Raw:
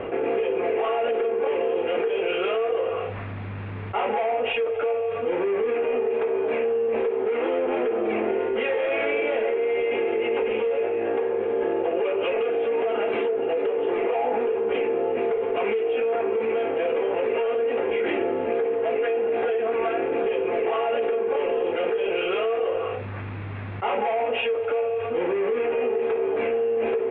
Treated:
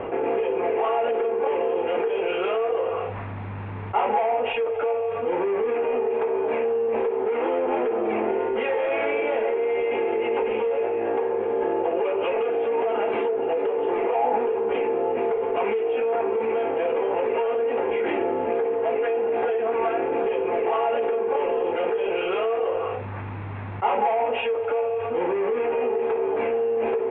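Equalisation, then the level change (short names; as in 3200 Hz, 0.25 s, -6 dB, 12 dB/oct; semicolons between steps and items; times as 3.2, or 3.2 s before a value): air absorption 180 m; bell 900 Hz +7.5 dB 0.48 oct; 0.0 dB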